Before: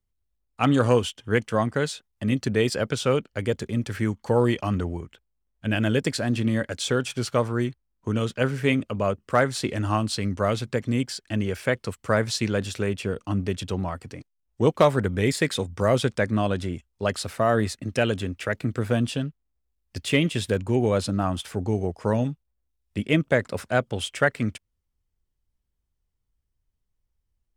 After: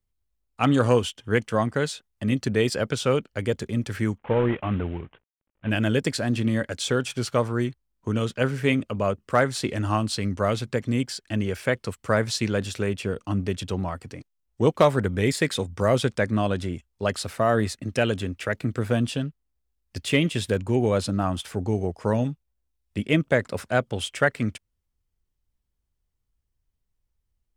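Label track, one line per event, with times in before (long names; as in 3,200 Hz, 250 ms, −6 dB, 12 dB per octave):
4.180000	5.700000	variable-slope delta modulation 16 kbit/s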